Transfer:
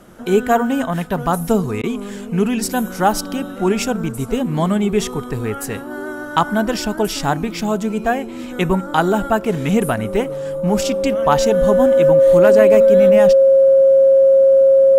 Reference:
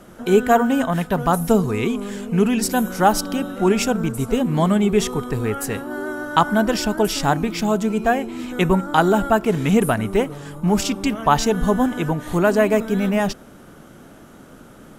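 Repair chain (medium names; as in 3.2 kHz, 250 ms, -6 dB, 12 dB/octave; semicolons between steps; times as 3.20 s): clip repair -3 dBFS; band-stop 540 Hz, Q 30; interpolate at 1.82 s, 14 ms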